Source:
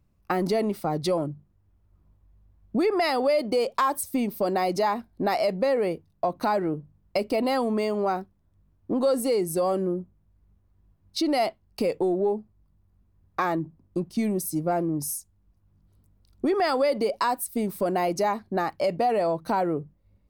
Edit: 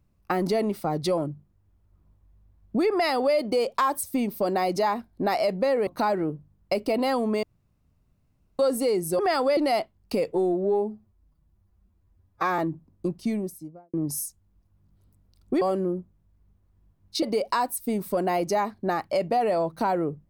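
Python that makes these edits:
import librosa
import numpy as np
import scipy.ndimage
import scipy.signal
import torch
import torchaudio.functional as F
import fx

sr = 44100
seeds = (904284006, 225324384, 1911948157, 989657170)

y = fx.studio_fade_out(x, sr, start_s=14.01, length_s=0.84)
y = fx.edit(y, sr, fx.cut(start_s=5.87, length_s=0.44),
    fx.room_tone_fill(start_s=7.87, length_s=1.16),
    fx.swap(start_s=9.63, length_s=1.61, other_s=16.53, other_length_s=0.38),
    fx.stretch_span(start_s=11.99, length_s=1.51, factor=1.5), tone=tone)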